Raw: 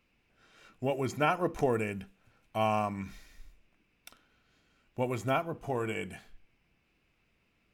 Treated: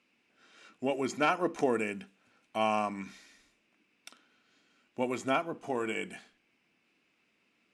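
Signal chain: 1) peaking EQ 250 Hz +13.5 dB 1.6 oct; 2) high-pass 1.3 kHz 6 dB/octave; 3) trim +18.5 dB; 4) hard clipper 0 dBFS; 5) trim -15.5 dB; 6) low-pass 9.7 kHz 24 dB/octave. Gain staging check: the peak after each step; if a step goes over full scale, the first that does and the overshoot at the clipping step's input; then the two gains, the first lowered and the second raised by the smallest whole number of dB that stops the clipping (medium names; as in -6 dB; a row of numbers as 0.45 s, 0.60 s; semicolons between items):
-7.0 dBFS, -15.5 dBFS, +3.0 dBFS, 0.0 dBFS, -15.5 dBFS, -15.0 dBFS; step 3, 3.0 dB; step 3 +15.5 dB, step 5 -12.5 dB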